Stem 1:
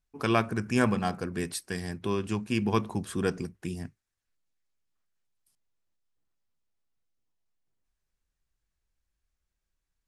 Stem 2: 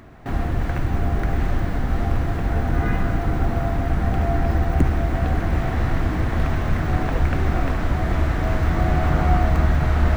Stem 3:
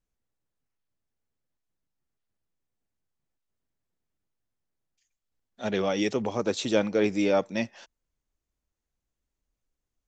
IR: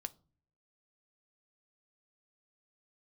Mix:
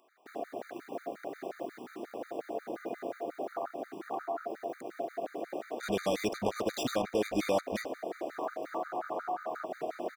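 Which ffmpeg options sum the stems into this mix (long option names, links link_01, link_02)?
-filter_complex "[1:a]highshelf=frequency=4500:gain=8.5,afwtdn=0.0794,volume=1.5dB[link_01];[2:a]alimiter=limit=-21dB:level=0:latency=1:release=432,acrusher=bits=5:mix=0:aa=0.5,adelay=200,volume=2.5dB[link_02];[link_01]highpass=frequency=400:width=0.5412,highpass=frequency=400:width=1.3066,acompressor=threshold=-30dB:ratio=10,volume=0dB[link_03];[link_02][link_03]amix=inputs=2:normalize=0,afftfilt=real='re*gt(sin(2*PI*5.6*pts/sr)*(1-2*mod(floor(b*sr/1024/1200),2)),0)':imag='im*gt(sin(2*PI*5.6*pts/sr)*(1-2*mod(floor(b*sr/1024/1200),2)),0)':win_size=1024:overlap=0.75"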